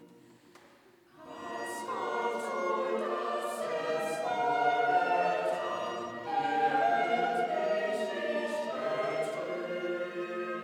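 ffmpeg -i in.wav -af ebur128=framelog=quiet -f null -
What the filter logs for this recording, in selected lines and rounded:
Integrated loudness:
  I:         -31.7 LUFS
  Threshold: -42.2 LUFS
Loudness range:
  LRA:         5.3 LU
  Threshold: -51.4 LUFS
  LRA low:   -34.9 LUFS
  LRA high:  -29.6 LUFS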